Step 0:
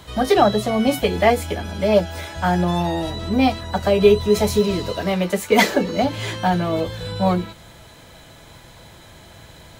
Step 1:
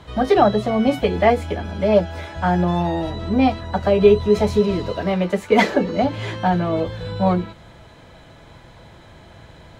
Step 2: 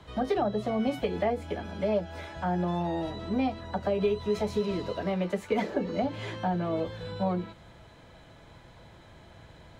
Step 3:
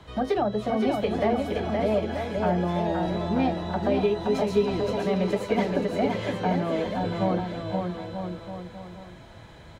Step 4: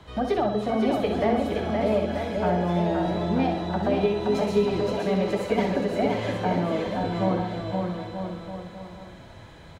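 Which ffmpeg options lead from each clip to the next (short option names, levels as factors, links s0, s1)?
-af "aemphasis=mode=reproduction:type=75fm"
-filter_complex "[0:a]acrossover=split=140|780[s0][s1][s2];[s0]acompressor=threshold=0.0141:ratio=4[s3];[s1]acompressor=threshold=0.126:ratio=4[s4];[s2]acompressor=threshold=0.0316:ratio=4[s5];[s3][s4][s5]amix=inputs=3:normalize=0,volume=0.422"
-af "aecho=1:1:520|936|1269|1535|1748:0.631|0.398|0.251|0.158|0.1,volume=1.33"
-af "aecho=1:1:63|126|189|252|315|378:0.422|0.219|0.114|0.0593|0.0308|0.016"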